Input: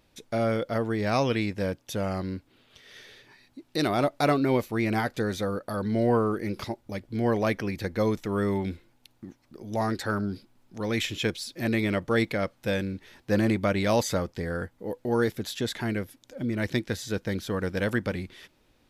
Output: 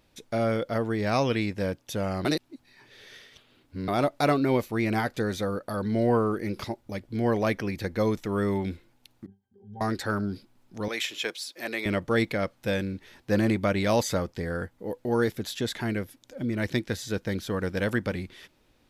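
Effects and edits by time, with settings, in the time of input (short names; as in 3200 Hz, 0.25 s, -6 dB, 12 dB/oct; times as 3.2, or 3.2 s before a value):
2.25–3.88 reverse
9.26–9.81 octave resonator G, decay 0.23 s
10.88–11.86 HPF 520 Hz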